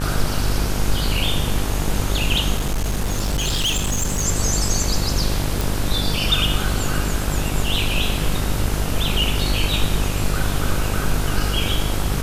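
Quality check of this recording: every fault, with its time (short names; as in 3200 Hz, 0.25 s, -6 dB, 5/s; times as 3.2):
buzz 50 Hz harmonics 34 -24 dBFS
2.56–4.25 clipped -17 dBFS
5.61 pop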